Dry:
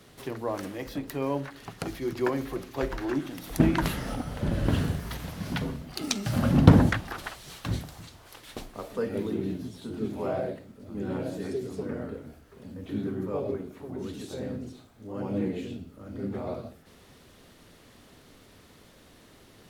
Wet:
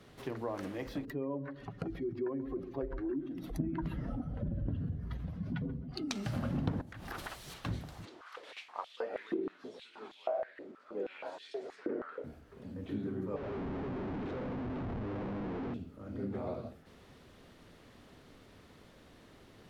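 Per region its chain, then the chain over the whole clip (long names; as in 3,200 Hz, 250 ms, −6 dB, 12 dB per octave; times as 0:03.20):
0:01.05–0:06.11: expanding power law on the bin magnitudes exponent 1.7 + notch filter 880 Hz, Q 13 + feedback echo with a low-pass in the loop 133 ms, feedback 44%, low-pass 870 Hz, level −14 dB
0:06.81–0:07.54: high-shelf EQ 7,400 Hz +11 dB + downward compressor 10 to 1, threshold −32 dBFS
0:08.05–0:12.24: high-frequency loss of the air 60 metres + high-pass on a step sequencer 6.3 Hz 350–3,300 Hz
0:13.36–0:15.74: upward compression, threshold −32 dBFS + comparator with hysteresis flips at −45.5 dBFS + head-to-tape spacing loss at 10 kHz 34 dB
whole clip: high-shelf EQ 5,400 Hz −11 dB; downward compressor 4 to 1, threshold −31 dBFS; level −2.5 dB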